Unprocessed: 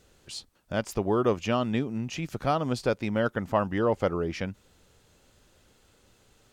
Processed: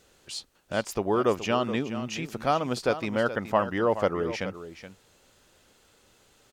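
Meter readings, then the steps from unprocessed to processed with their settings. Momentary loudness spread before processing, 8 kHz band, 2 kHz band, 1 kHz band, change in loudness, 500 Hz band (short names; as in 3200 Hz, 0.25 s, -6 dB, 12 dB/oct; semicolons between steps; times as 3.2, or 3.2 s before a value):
11 LU, +3.0 dB, +2.5 dB, +2.5 dB, +0.5 dB, +1.0 dB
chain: low shelf 220 Hz -9 dB; echo 0.423 s -12 dB; gain +2.5 dB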